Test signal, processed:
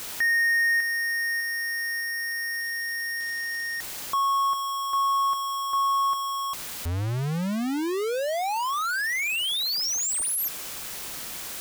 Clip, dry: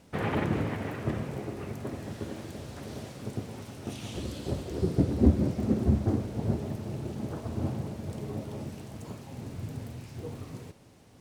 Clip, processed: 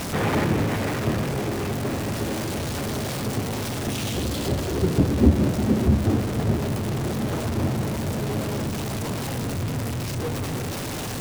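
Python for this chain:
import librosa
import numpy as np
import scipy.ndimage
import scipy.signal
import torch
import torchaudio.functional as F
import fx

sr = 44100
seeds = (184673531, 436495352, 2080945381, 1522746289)

y = x + 0.5 * 10.0 ** (-28.0 / 20.0) * np.sign(x)
y = y * 10.0 ** (3.5 / 20.0)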